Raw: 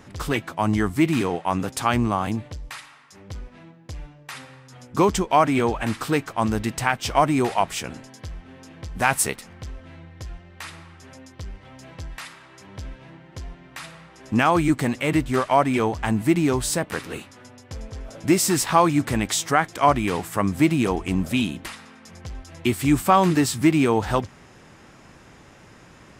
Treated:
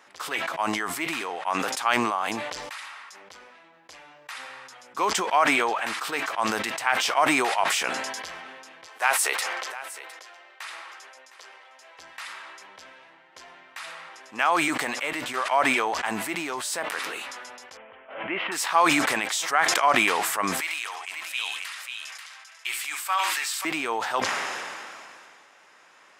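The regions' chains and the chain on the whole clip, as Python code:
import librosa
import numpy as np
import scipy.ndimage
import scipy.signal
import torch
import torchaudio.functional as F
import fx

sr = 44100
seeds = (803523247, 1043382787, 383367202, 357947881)

y = fx.chain(x, sr, fx.highpass(hz=360.0, slope=24),
    fx.echo_single(ms=710, db=-15.5), at=(8.86, 11.99))
y = fx.chain(y, sr, fx.cheby1_lowpass(hz=3100.0, order=6),
    fx.pre_swell(db_per_s=100.0), at=(17.77, 18.52))
y = fx.chain(y, sr, fx.highpass(hz=1400.0, slope=12),
    fx.echo_multitap(ms=(69, 537), db=(-11.0, -6.0)), at=(20.6, 23.65))
y = scipy.signal.sosfilt(scipy.signal.butter(2, 810.0, 'highpass', fs=sr, output='sos'), y)
y = fx.high_shelf(y, sr, hz=4800.0, db=-5.5)
y = fx.sustainer(y, sr, db_per_s=24.0)
y = y * librosa.db_to_amplitude(-1.0)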